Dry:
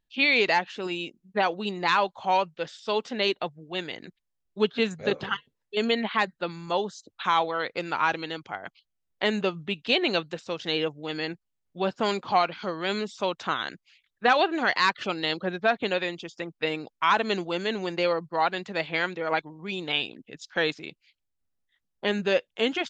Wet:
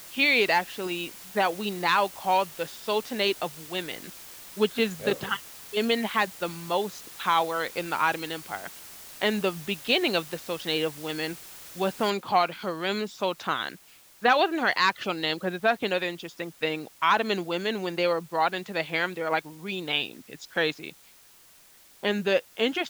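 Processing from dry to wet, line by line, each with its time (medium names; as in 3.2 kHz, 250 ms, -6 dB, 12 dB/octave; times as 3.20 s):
12.10 s: noise floor step -45 dB -55 dB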